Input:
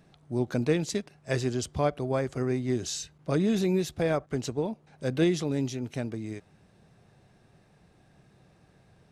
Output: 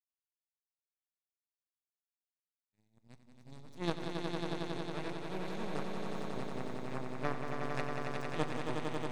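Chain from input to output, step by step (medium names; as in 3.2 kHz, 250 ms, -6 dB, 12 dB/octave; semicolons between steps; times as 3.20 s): reverse the whole clip; power-law waveshaper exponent 3; time-frequency box 2.64–3.76 s, 270–3300 Hz -9 dB; echo with a slow build-up 91 ms, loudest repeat 5, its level -5 dB; on a send at -15.5 dB: reverberation RT60 0.75 s, pre-delay 6 ms; on the sum: trim -3.5 dB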